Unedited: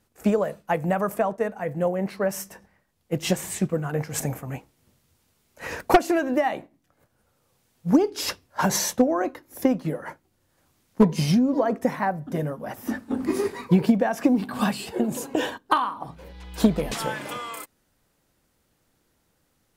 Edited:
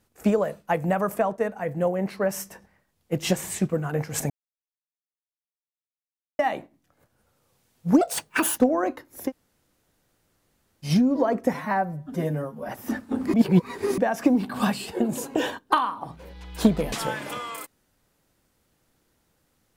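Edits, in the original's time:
0:04.30–0:06.39: silence
0:08.01–0:08.96: play speed 166%
0:09.65–0:11.25: fill with room tone, crossfade 0.10 s
0:11.91–0:12.68: time-stretch 1.5×
0:13.33–0:13.97: reverse

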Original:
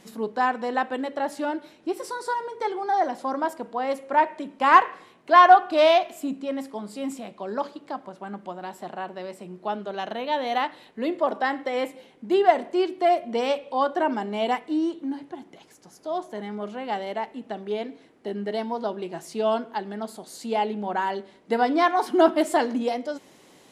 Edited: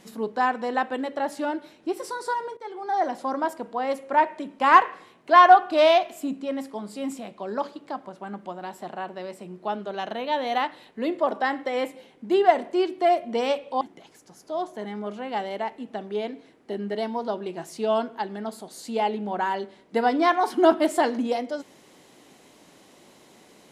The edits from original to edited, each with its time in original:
0:02.57–0:03.08: fade in, from −16 dB
0:13.81–0:15.37: remove

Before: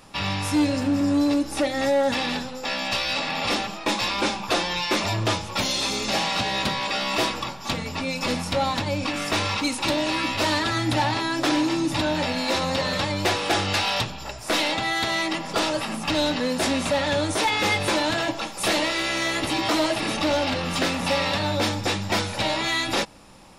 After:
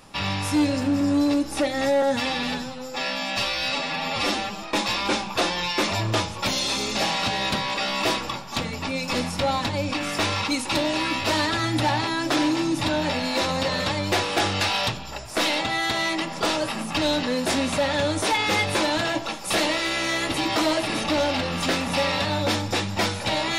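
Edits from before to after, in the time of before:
0:02.02–0:03.76: time-stretch 1.5×

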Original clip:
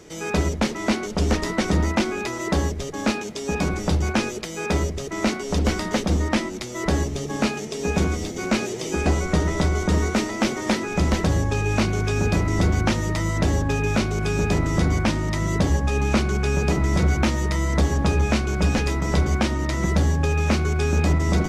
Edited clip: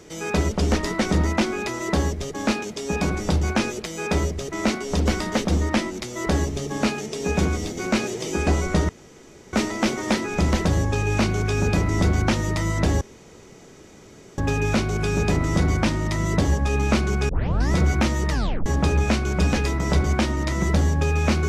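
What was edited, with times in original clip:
0:00.51–0:01.10: remove
0:09.48–0:10.12: fill with room tone
0:13.60: splice in room tone 1.37 s
0:16.51: tape start 0.43 s
0:17.52: tape stop 0.36 s

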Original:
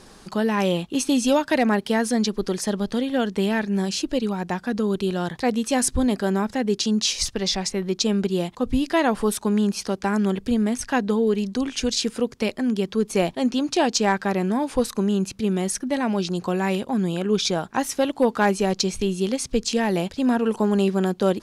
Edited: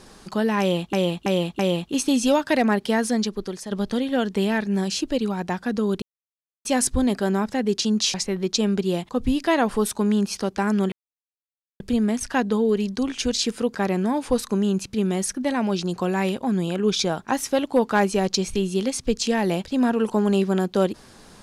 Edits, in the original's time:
0:00.60–0:00.93: repeat, 4 plays
0:02.07–0:02.72: fade out linear, to −11 dB
0:05.03–0:05.66: silence
0:07.15–0:07.60: remove
0:10.38: splice in silence 0.88 s
0:12.33–0:14.21: remove

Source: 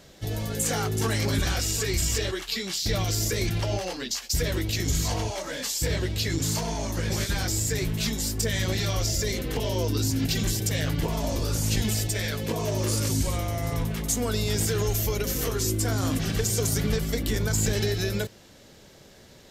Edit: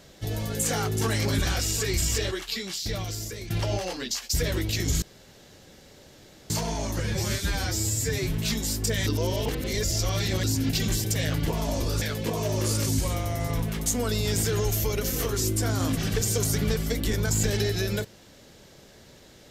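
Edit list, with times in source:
0:02.29–0:03.50: fade out, to −13 dB
0:05.02–0:06.50: fill with room tone
0:07.00–0:07.89: time-stretch 1.5×
0:08.62–0:09.99: reverse
0:11.57–0:12.24: remove

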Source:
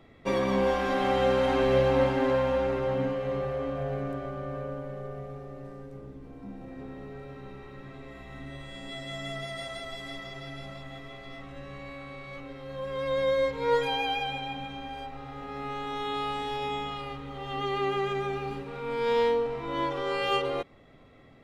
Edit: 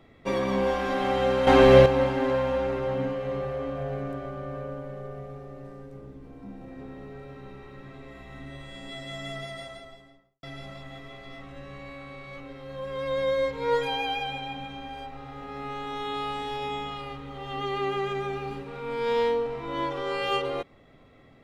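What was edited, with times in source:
0:01.47–0:01.86: clip gain +9 dB
0:09.35–0:10.43: fade out and dull

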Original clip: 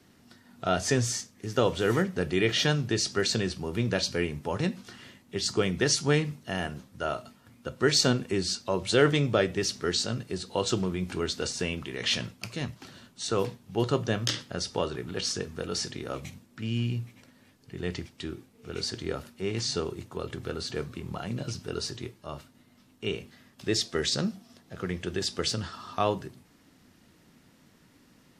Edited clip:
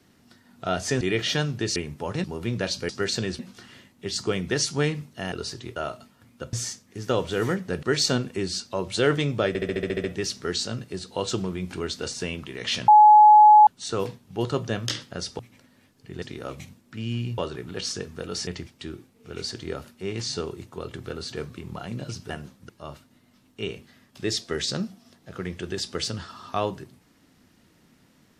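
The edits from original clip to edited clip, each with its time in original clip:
0:01.01–0:02.31: move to 0:07.78
0:03.06–0:03.56: swap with 0:04.21–0:04.69
0:06.62–0:07.01: swap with 0:21.69–0:22.13
0:09.43: stutter 0.07 s, 9 plays
0:12.27–0:13.06: beep over 847 Hz −8.5 dBFS
0:14.78–0:15.87: swap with 0:17.03–0:17.86

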